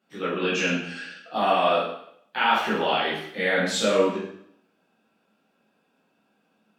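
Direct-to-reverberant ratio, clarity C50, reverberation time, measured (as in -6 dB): -9.5 dB, 2.0 dB, 0.70 s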